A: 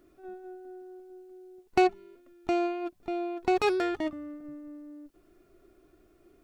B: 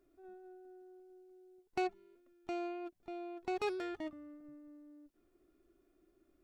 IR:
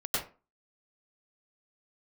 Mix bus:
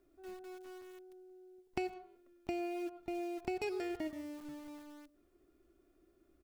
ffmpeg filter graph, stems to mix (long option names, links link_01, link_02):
-filter_complex "[0:a]aeval=exprs='val(0)*gte(abs(val(0)),0.0075)':channel_layout=same,adynamicequalizer=threshold=0.00501:dfrequency=4000:dqfactor=0.7:tfrequency=4000:tqfactor=0.7:attack=5:release=100:ratio=0.375:range=2.5:mode=boostabove:tftype=highshelf,volume=-8.5dB[link_01];[1:a]adelay=0.4,volume=0.5dB,asplit=2[link_02][link_03];[link_03]volume=-17dB[link_04];[2:a]atrim=start_sample=2205[link_05];[link_04][link_05]afir=irnorm=-1:irlink=0[link_06];[link_01][link_02][link_06]amix=inputs=3:normalize=0,equalizer=frequency=64:width_type=o:width=0.22:gain=10,acompressor=threshold=-36dB:ratio=4"